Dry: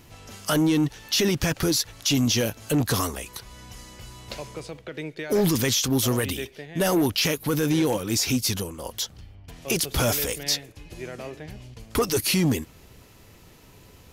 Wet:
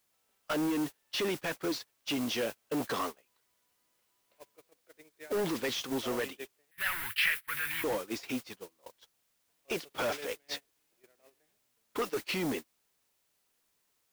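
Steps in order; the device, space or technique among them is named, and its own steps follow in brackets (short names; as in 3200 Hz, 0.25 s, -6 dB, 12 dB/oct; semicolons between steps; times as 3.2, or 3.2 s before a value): aircraft radio (BPF 370–2700 Hz; hard clip -25 dBFS, distortion -11 dB; white noise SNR 10 dB; gate -32 dBFS, range -30 dB); 6.71–7.84 EQ curve 110 Hz 0 dB, 310 Hz -27 dB, 570 Hz -22 dB, 1800 Hz +12 dB, 6500 Hz -7 dB, 11000 Hz +8 dB; gain -3 dB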